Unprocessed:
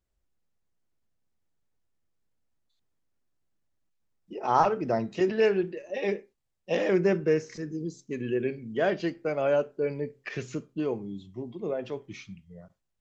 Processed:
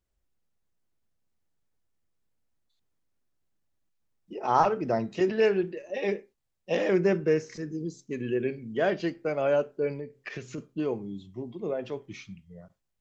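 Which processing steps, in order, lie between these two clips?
0:09.94–0:10.58: downward compressor, threshold −34 dBFS, peak gain reduction 7.5 dB

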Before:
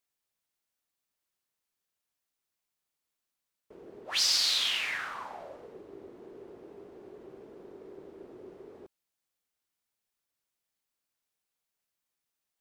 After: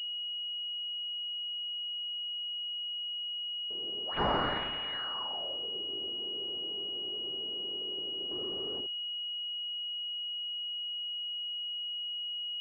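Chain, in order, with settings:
0:08.31–0:08.81: leveller curve on the samples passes 3
switching amplifier with a slow clock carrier 2,900 Hz

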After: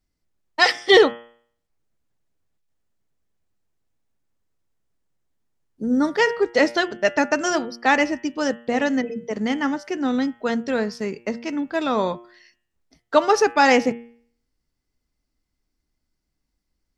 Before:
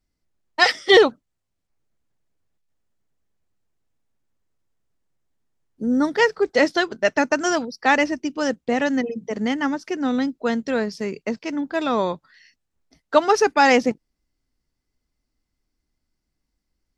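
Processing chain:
hum removal 117.7 Hz, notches 29

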